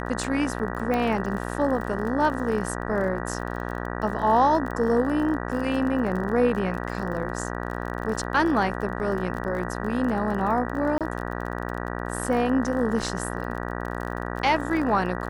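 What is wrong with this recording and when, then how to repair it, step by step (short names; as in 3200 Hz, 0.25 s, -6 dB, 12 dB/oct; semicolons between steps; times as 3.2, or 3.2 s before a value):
buzz 60 Hz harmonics 32 -31 dBFS
crackle 30/s -32 dBFS
0.94 pop -15 dBFS
10.98–11.01 gap 27 ms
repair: de-click; de-hum 60 Hz, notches 32; interpolate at 10.98, 27 ms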